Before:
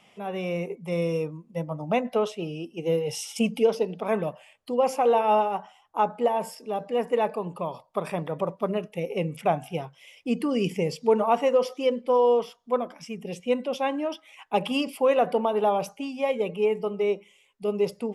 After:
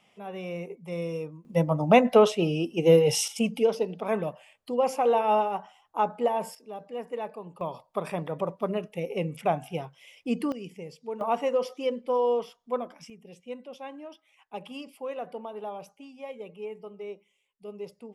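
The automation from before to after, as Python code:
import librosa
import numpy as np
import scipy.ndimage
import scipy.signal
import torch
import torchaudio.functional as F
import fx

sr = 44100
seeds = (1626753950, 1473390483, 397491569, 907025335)

y = fx.gain(x, sr, db=fx.steps((0.0, -6.0), (1.45, 7.0), (3.28, -2.0), (6.55, -10.0), (7.61, -2.0), (10.52, -14.5), (11.21, -4.5), (13.1, -14.0)))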